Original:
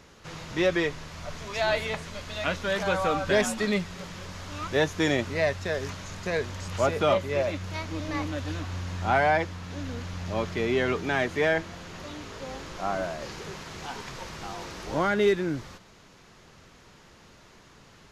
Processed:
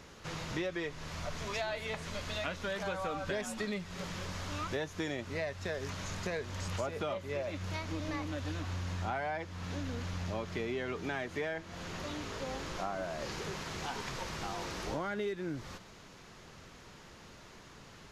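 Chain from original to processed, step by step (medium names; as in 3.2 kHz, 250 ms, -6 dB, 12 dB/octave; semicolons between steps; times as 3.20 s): compression 6:1, threshold -34 dBFS, peak gain reduction 15 dB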